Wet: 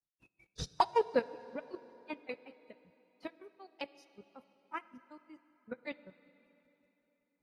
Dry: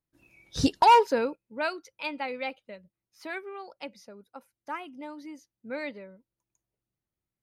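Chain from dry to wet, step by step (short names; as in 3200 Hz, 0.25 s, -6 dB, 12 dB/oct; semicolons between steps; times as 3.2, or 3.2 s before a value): grains 0.1 s, grains 5.3/s, spray 28 ms, pitch spread up and down by 0 st; level quantiser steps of 13 dB; on a send at -16 dB: resonant low shelf 110 Hz -10 dB, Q 1.5 + reverb RT60 3.6 s, pre-delay 3 ms; on the sum: gain +1.5 dB; AAC 32 kbps 44100 Hz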